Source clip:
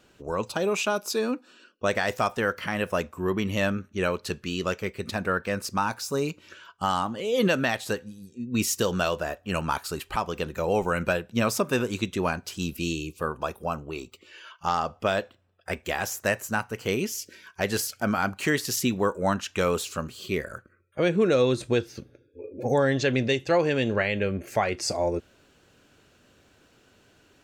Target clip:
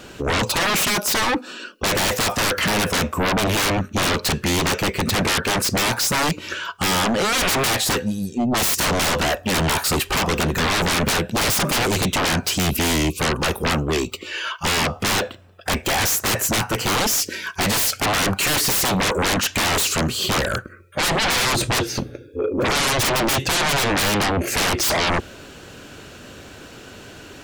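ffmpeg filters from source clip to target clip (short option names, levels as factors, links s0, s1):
-af "aeval=exprs='0.251*sin(PI/2*10*val(0)/0.251)':c=same,volume=0.596"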